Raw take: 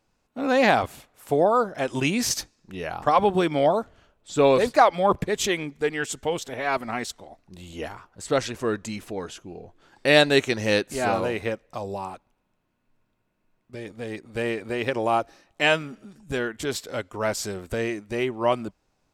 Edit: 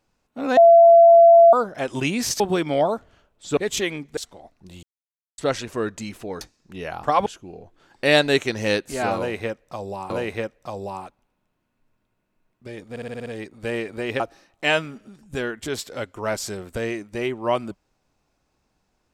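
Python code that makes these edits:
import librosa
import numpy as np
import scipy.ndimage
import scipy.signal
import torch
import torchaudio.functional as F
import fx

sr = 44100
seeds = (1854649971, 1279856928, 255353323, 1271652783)

y = fx.edit(x, sr, fx.bleep(start_s=0.57, length_s=0.96, hz=676.0, db=-7.0),
    fx.move(start_s=2.4, length_s=0.85, to_s=9.28),
    fx.cut(start_s=4.42, length_s=0.82),
    fx.cut(start_s=5.84, length_s=1.2),
    fx.silence(start_s=7.7, length_s=0.55),
    fx.repeat(start_s=11.18, length_s=0.94, count=2),
    fx.stutter(start_s=13.98, slice_s=0.06, count=7),
    fx.cut(start_s=14.92, length_s=0.25), tone=tone)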